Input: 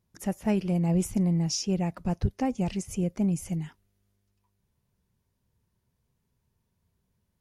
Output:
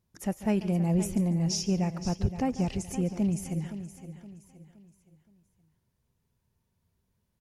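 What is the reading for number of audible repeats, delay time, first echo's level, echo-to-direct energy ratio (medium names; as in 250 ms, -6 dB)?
7, 143 ms, -16.0 dB, -10.0 dB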